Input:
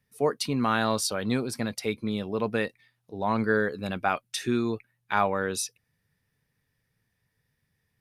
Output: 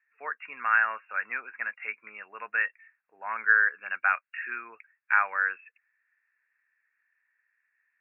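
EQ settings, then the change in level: resonant high-pass 1600 Hz, resonance Q 3.6; brick-wall FIR low-pass 2800 Hz; air absorption 170 m; 0.0 dB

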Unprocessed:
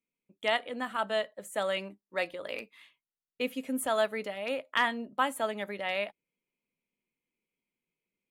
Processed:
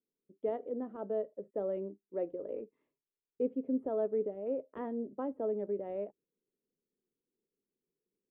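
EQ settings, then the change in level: synth low-pass 410 Hz, resonance Q 3.5; -3.5 dB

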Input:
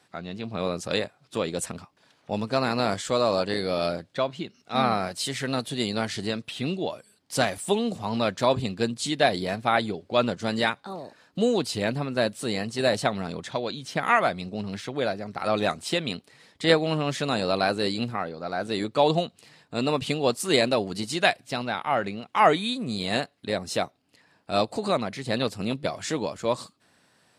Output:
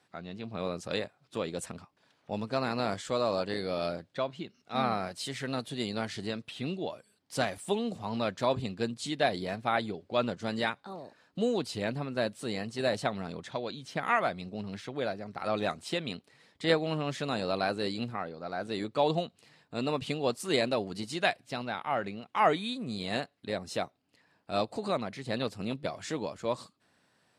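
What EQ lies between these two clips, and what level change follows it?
high shelf 5600 Hz -5 dB; -6.0 dB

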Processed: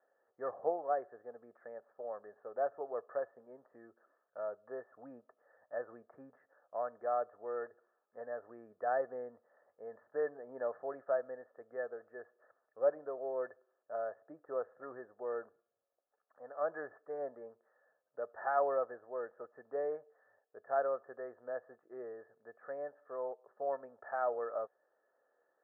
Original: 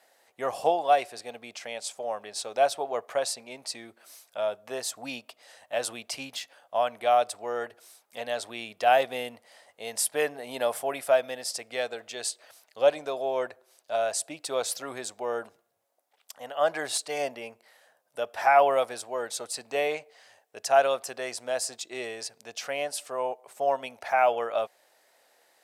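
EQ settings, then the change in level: rippled Chebyshev low-pass 1800 Hz, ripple 9 dB; -6.5 dB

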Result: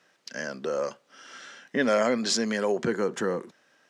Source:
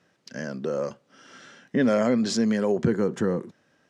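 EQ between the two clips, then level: HPF 790 Hz 6 dB/oct; +4.5 dB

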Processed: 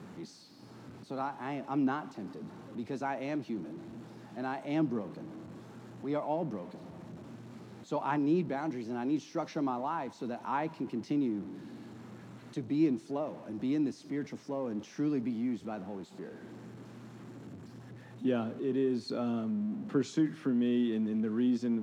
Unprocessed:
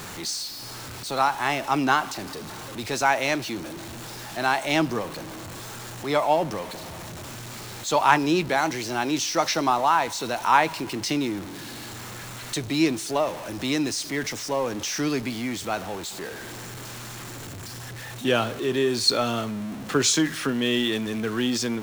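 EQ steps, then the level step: band-pass 210 Hz, Q 1.8; tilt +2 dB/oct; +3.0 dB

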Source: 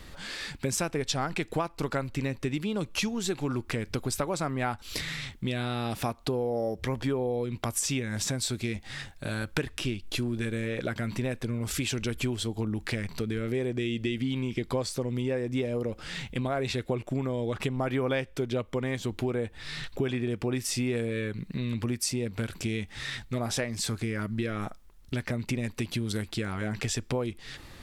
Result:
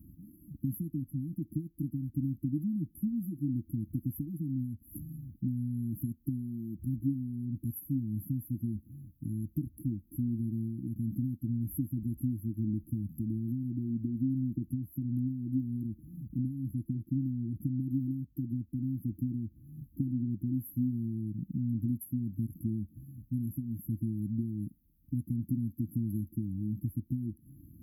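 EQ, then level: HPF 78 Hz; brick-wall FIR band-stop 330–11000 Hz; notch 910 Hz, Q 20; 0.0 dB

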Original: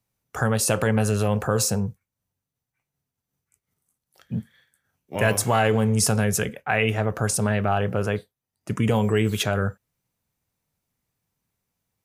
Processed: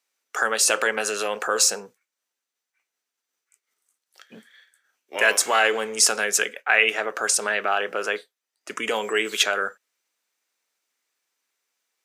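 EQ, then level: HPF 340 Hz 24 dB/oct; band shelf 3200 Hz +8.5 dB 3 oct; -1.5 dB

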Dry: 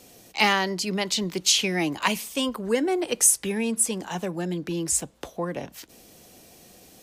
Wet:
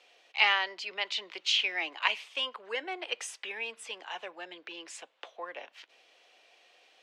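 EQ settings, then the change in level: Bessel high-pass 750 Hz, order 4; synth low-pass 2900 Hz, resonance Q 1.8; -5.5 dB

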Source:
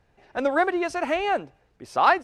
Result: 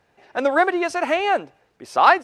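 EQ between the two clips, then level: HPF 290 Hz 6 dB/oct; +5.0 dB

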